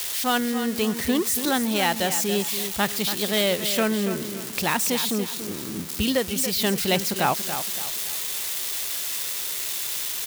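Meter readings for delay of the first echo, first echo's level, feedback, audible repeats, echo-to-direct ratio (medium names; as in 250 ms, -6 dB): 283 ms, -10.0 dB, 36%, 3, -9.5 dB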